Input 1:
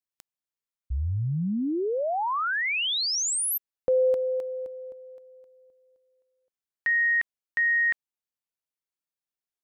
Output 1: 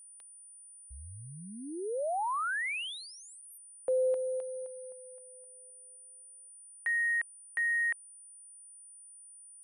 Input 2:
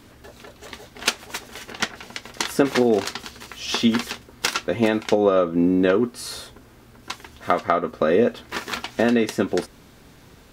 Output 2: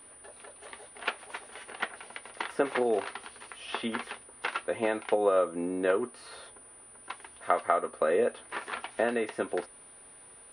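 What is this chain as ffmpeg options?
ffmpeg -i in.wav -filter_complex "[0:a]acrossover=split=480 4000:gain=0.0708 1 0.112[link_01][link_02][link_03];[link_01][link_02][link_03]amix=inputs=3:normalize=0,acrossover=split=3300[link_04][link_05];[link_05]acompressor=threshold=-49dB:ratio=4:attack=1:release=60[link_06];[link_04][link_06]amix=inputs=2:normalize=0,lowshelf=frequency=460:gain=10,aeval=exprs='val(0)+0.00631*sin(2*PI*9400*n/s)':channel_layout=same,volume=-6.5dB" out.wav

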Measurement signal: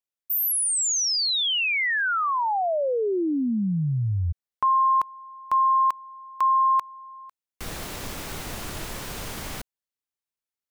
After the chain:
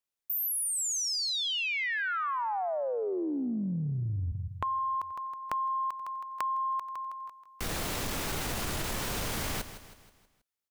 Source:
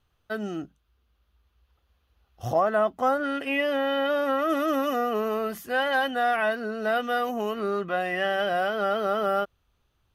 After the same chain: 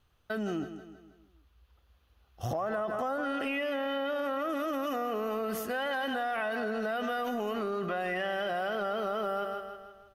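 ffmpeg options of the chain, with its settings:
ffmpeg -i in.wav -af "aecho=1:1:160|320|480|640|800:0.211|0.101|0.0487|0.0234|0.0112,acompressor=threshold=-32dB:ratio=10:attack=4.9:release=36:knee=1:detection=peak,volume=1.5dB" out.wav

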